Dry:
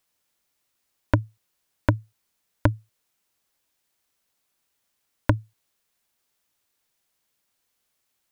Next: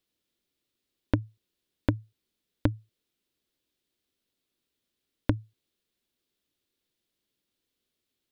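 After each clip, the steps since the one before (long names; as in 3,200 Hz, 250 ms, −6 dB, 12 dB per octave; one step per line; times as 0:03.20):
drawn EQ curve 160 Hz 0 dB, 240 Hz +4 dB, 370 Hz +5 dB, 810 Hz −11 dB, 2,300 Hz −6 dB, 3,600 Hz 0 dB, 6,200 Hz −9 dB
downward compressor, threshold −18 dBFS, peak gain reduction 6.5 dB
level −1.5 dB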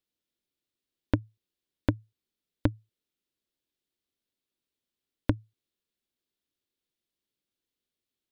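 expander for the loud parts 1.5 to 1, over −34 dBFS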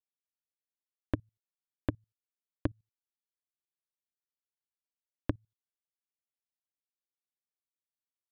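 output level in coarse steps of 21 dB
highs frequency-modulated by the lows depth 0.25 ms
level −5.5 dB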